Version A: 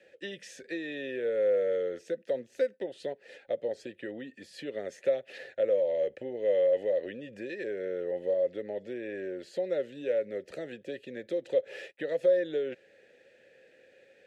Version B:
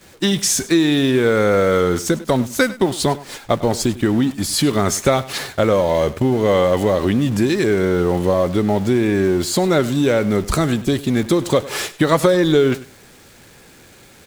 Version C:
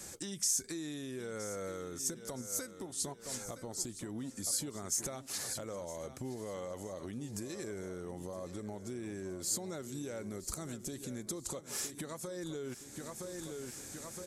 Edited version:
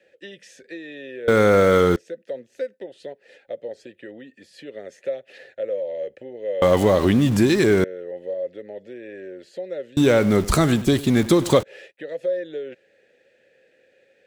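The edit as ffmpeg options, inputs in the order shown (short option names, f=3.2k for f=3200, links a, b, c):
-filter_complex "[1:a]asplit=3[a][b][c];[0:a]asplit=4[d][e][f][g];[d]atrim=end=1.282[h];[a]atrim=start=1.278:end=1.962[i];[e]atrim=start=1.958:end=6.622[j];[b]atrim=start=6.618:end=7.842[k];[f]atrim=start=7.838:end=9.972[l];[c]atrim=start=9.968:end=11.632[m];[g]atrim=start=11.628[n];[h][i]acrossfade=d=0.004:c1=hsin:c2=hsin[o];[o][j]acrossfade=d=0.004:c1=hsin:c2=hsin[p];[p][k]acrossfade=d=0.004:c1=hsin:c2=hsin[q];[q][l]acrossfade=d=0.004:c1=hsin:c2=hsin[r];[r][m]acrossfade=d=0.004:c1=hsin:c2=hsin[s];[s][n]acrossfade=d=0.004:c1=hsin:c2=hsin"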